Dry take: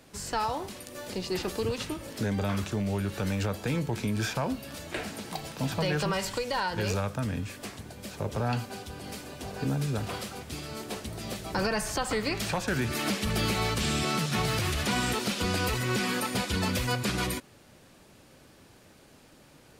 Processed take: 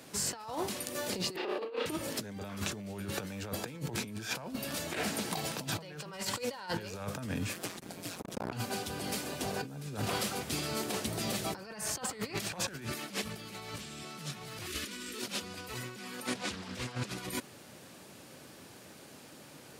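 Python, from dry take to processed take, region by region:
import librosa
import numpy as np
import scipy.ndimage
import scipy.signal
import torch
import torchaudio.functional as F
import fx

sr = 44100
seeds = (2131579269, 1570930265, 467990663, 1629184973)

y = fx.chain(x, sr, fx.highpass(hz=340.0, slope=24),
    fx.air_absorb(metres=420.0),
    fx.room_flutter(wall_m=5.6, rt60_s=0.54), at=(1.36, 1.86))
y = fx.chain(y, sr, fx.ring_mod(carrier_hz=88.0),
    fx.transformer_sat(knee_hz=520.0), at=(7.53, 8.52))
y = fx.chain(y, sr, fx.fixed_phaser(hz=320.0, stages=4),
    fx.env_flatten(amount_pct=50), at=(14.66, 15.22))
y = fx.chain(y, sr, fx.lowpass(hz=8100.0, slope=12),
    fx.doppler_dist(depth_ms=0.35), at=(16.27, 17.09))
y = scipy.signal.sosfilt(scipy.signal.butter(2, 120.0, 'highpass', fs=sr, output='sos'), y)
y = fx.high_shelf(y, sr, hz=5500.0, db=4.0)
y = fx.over_compress(y, sr, threshold_db=-35.0, ratio=-0.5)
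y = y * librosa.db_to_amplitude(-1.5)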